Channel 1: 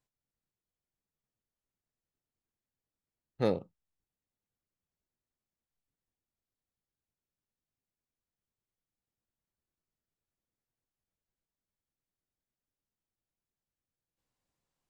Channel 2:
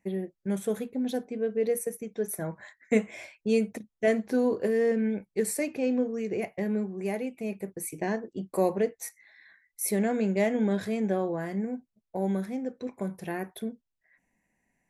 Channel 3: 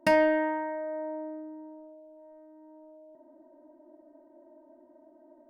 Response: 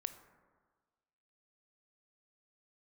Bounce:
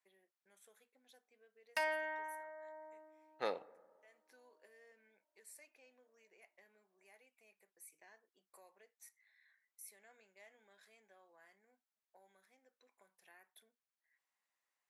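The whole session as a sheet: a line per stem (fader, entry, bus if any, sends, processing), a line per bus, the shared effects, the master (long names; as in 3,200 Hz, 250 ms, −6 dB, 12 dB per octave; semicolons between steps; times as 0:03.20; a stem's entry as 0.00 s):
+1.0 dB, 0.00 s, send −3 dB, high-shelf EQ 2,000 Hz −11 dB
−16.0 dB, 0.00 s, no send, downward compressor 2 to 1, threshold −41 dBFS, peak gain reduction 12.5 dB; automatic ducking −21 dB, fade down 1.10 s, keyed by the first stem
−7.5 dB, 1.70 s, no send, downward expander −46 dBFS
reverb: on, RT60 1.5 s, pre-delay 17 ms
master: high-pass filter 1,100 Hz 12 dB per octave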